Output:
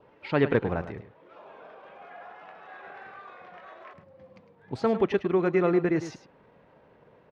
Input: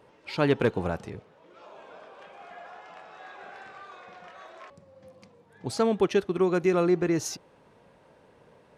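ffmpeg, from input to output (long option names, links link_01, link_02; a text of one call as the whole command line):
ffmpeg -i in.wav -filter_complex "[0:a]lowpass=2800,adynamicequalizer=threshold=0.00178:dfrequency=1900:dqfactor=4.7:tfrequency=1900:tqfactor=4.7:attack=5:release=100:ratio=0.375:range=2.5:mode=boostabove:tftype=bell,atempo=1.2,asplit=2[link_01][link_02];[link_02]aecho=0:1:105:0.251[link_03];[link_01][link_03]amix=inputs=2:normalize=0" out.wav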